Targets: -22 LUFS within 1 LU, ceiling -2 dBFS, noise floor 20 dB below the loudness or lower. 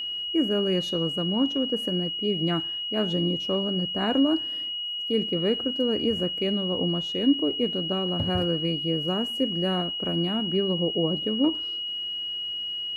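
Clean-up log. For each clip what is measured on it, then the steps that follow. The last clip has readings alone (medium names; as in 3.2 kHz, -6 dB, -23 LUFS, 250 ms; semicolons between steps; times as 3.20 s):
tick rate 37 per s; steady tone 2.9 kHz; tone level -29 dBFS; loudness -25.5 LUFS; peak level -11.5 dBFS; loudness target -22.0 LUFS
-> de-click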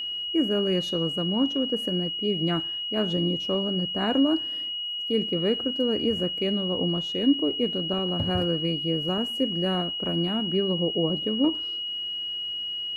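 tick rate 0.077 per s; steady tone 2.9 kHz; tone level -29 dBFS
-> band-stop 2.9 kHz, Q 30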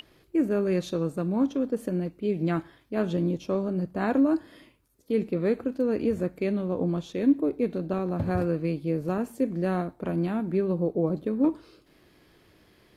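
steady tone not found; loudness -27.5 LUFS; peak level -12.5 dBFS; loudness target -22.0 LUFS
-> trim +5.5 dB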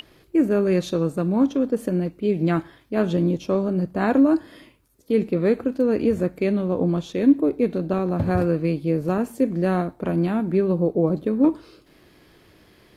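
loudness -22.0 LUFS; peak level -7.0 dBFS; noise floor -56 dBFS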